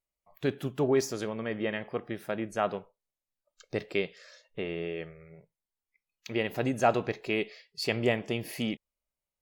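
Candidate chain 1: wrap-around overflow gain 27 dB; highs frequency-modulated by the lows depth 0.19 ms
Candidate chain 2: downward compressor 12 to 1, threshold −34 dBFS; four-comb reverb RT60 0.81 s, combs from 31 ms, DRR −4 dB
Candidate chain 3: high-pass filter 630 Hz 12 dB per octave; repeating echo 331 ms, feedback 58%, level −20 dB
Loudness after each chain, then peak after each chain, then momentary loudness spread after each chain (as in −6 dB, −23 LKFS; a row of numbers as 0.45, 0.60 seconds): −35.0, −35.5, −36.0 LKFS; −27.0, −19.0, −13.5 dBFS; 9, 11, 16 LU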